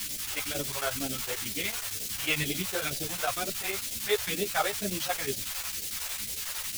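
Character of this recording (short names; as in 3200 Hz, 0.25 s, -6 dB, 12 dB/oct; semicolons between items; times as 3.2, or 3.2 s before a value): a quantiser's noise floor 6-bit, dither triangular; phasing stages 2, 2.1 Hz, lowest notch 210–1100 Hz; chopped level 11 Hz, depth 60%, duty 75%; a shimmering, thickened sound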